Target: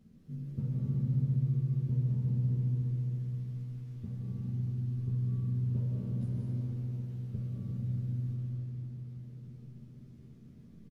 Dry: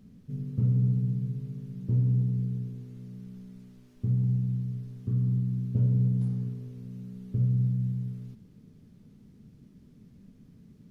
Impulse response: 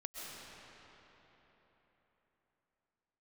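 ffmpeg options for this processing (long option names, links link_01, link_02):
-filter_complex "[0:a]asplit=2[link_01][link_02];[link_02]adelay=13,volume=-2dB[link_03];[link_01][link_03]amix=inputs=2:normalize=0,asplit=3[link_04][link_05][link_06];[link_05]adelay=111,afreqshift=110,volume=-21.5dB[link_07];[link_06]adelay=222,afreqshift=220,volume=-31.4dB[link_08];[link_04][link_07][link_08]amix=inputs=3:normalize=0[link_09];[1:a]atrim=start_sample=2205,asetrate=38808,aresample=44100[link_10];[link_09][link_10]afir=irnorm=-1:irlink=0,volume=-3dB"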